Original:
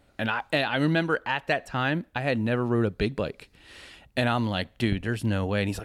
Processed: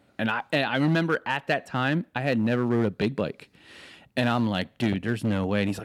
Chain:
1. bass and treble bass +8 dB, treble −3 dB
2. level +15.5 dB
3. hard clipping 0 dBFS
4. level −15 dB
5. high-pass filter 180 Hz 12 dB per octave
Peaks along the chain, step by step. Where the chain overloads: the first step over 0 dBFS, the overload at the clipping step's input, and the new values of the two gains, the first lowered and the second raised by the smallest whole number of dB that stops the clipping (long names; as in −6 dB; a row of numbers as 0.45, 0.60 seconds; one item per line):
−8.0, +7.5, 0.0, −15.0, −10.5 dBFS
step 2, 7.5 dB
step 2 +7.5 dB, step 4 −7 dB